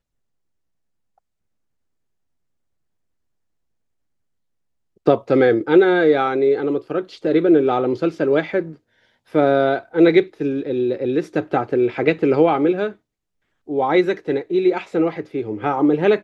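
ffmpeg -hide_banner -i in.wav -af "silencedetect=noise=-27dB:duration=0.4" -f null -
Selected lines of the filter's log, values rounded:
silence_start: 0.00
silence_end: 5.07 | silence_duration: 5.07
silence_start: 8.72
silence_end: 9.35 | silence_duration: 0.63
silence_start: 12.89
silence_end: 13.69 | silence_duration: 0.80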